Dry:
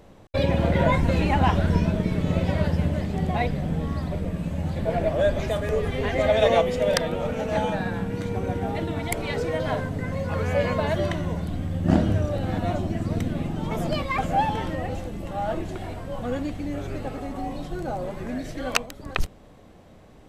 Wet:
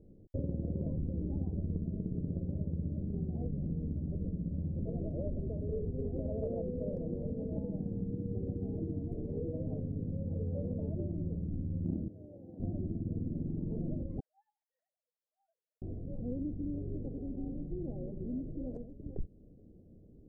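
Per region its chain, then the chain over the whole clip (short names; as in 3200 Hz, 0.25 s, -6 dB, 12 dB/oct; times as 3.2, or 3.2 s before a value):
12.08–12.6 HPF 1300 Hz 6 dB/oct + Doppler distortion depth 0.25 ms
14.2–15.82 sine-wave speech + inverse Chebyshev high-pass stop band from 350 Hz, stop band 70 dB + comb 6.3 ms
whole clip: inverse Chebyshev low-pass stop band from 1100 Hz, stop band 50 dB; compressor, threshold -26 dBFS; gain -5.5 dB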